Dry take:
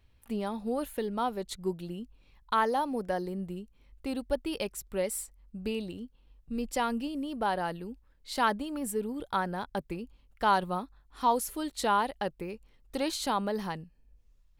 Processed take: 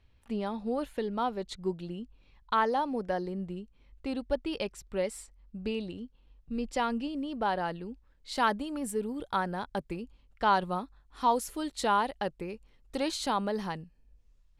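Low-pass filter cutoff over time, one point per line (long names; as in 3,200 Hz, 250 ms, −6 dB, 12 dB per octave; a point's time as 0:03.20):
0:07.85 5,900 Hz
0:08.51 10,000 Hz
0:10.01 10,000 Hz
0:10.51 5,700 Hz
0:10.68 9,400 Hz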